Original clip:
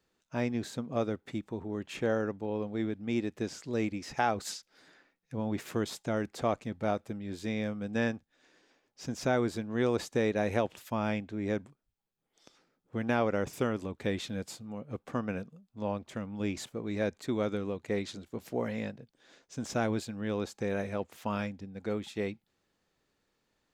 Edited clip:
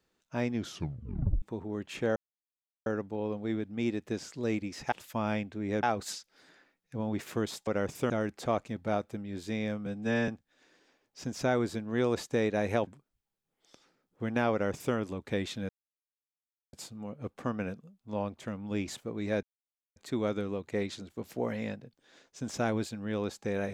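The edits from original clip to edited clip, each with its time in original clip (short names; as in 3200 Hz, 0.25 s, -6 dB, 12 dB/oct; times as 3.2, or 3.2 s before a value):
0.55 tape stop 0.87 s
2.16 insert silence 0.70 s
7.82–8.1 stretch 1.5×
10.69–11.6 move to 4.22
13.25–13.68 copy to 6.06
14.42 insert silence 1.04 s
17.12 insert silence 0.53 s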